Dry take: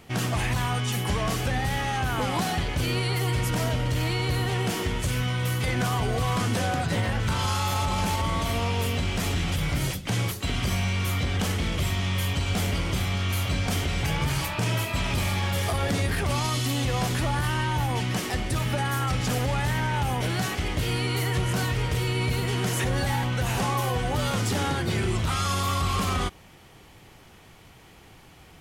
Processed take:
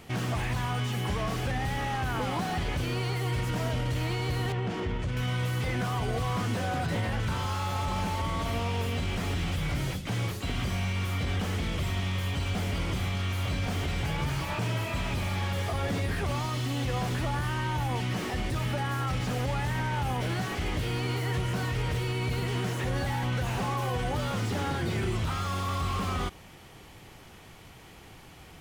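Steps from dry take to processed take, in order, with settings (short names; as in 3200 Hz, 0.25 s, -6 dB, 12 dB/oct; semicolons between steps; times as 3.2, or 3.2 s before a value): limiter -22.5 dBFS, peak gain reduction 6 dB; 4.52–5.17 tape spacing loss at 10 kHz 24 dB; slew limiter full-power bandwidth 40 Hz; gain +1 dB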